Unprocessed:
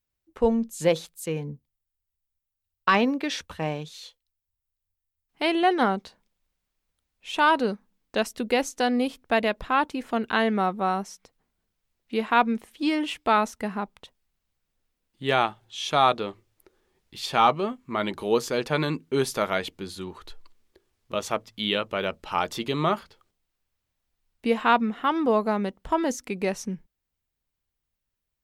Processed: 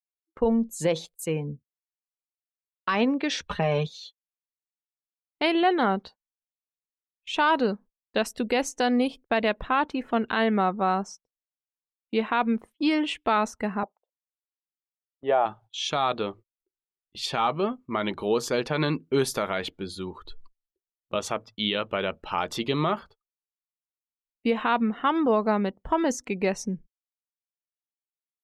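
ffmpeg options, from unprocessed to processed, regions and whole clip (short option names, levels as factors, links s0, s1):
-filter_complex "[0:a]asettb=1/sr,asplit=3[s0][s1][s2];[s0]atrim=end=3.464[s3];[s1]atrim=start=3.46:end=3.87,asetpts=PTS-STARTPTS,afade=t=in:d=0.004:c=qsin,afade=t=out:st=0.406:d=0.004:c=qsin,highshelf=f=8200:g=-6,acontrast=49,aecho=1:1:4.9:0.77,atrim=end_sample=18081[s4];[s2]atrim=start=3.866[s5];[s3][s4]acrossfade=d=0.004:c1=hsin:c2=qsin[s6];[s6][s5]acrossfade=d=0.004:c1=qsin:c2=hsin,asettb=1/sr,asplit=3[s7][s8][s9];[s7]atrim=end=13.834[s10];[s8]atrim=start=13.83:end=15.46,asetpts=PTS-STARTPTS,afade=t=in:d=0.004:c=qsin,afade=t=out:st=1.626:d=0.004:c=qsin,agate=range=0.251:threshold=0.00158:ratio=16:release=100:detection=peak,bandpass=f=650:t=q:w=2.4,acontrast=76[s11];[s9]atrim=start=15.456[s12];[s10][s11]acrossfade=d=0.004:c1=hsin:c2=qsin[s13];[s13][s12]acrossfade=d=0.004:c1=qsin:c2=hsin,afftdn=nr=18:nf=-48,agate=range=0.0562:threshold=0.00501:ratio=16:detection=peak,alimiter=limit=0.178:level=0:latency=1:release=73,volume=1.19"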